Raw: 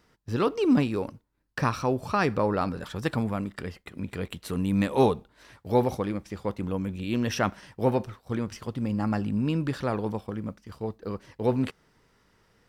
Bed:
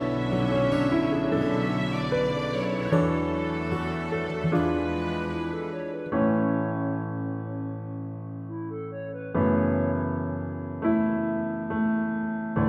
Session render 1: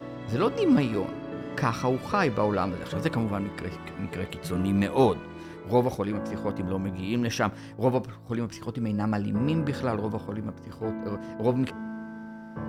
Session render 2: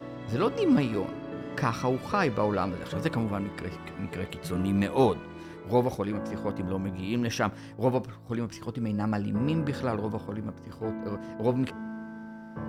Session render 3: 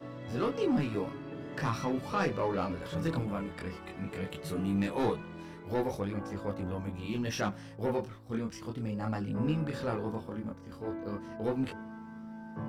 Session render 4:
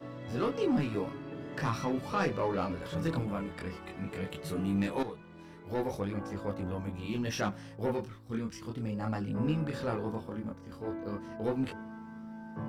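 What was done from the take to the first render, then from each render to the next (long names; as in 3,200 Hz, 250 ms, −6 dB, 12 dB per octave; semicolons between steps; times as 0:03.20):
mix in bed −11.5 dB
level −1.5 dB
soft clipping −19 dBFS, distortion −15 dB; multi-voice chorus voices 2, 0.16 Hz, delay 23 ms, depth 4 ms
0:05.03–0:06.02: fade in, from −13 dB; 0:07.92–0:08.71: parametric band 660 Hz −6 dB 0.94 octaves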